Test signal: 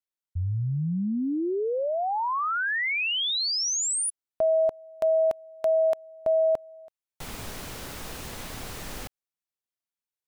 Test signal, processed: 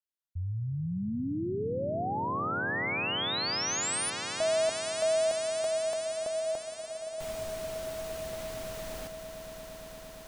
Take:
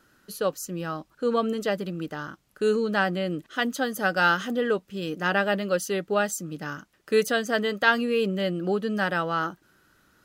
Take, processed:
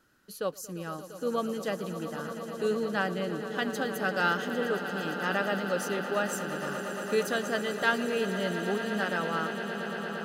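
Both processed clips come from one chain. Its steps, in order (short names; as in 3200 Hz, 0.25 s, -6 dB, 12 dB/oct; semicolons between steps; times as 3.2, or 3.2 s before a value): swelling echo 0.115 s, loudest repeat 8, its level -14.5 dB; gain -6 dB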